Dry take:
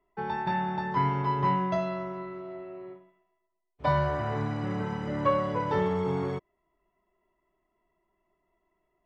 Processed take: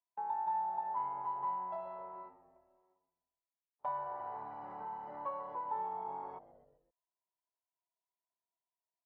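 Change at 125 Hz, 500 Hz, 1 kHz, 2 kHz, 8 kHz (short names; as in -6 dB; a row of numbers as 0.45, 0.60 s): -33.5 dB, -17.5 dB, -7.0 dB, -22.0 dB, n/a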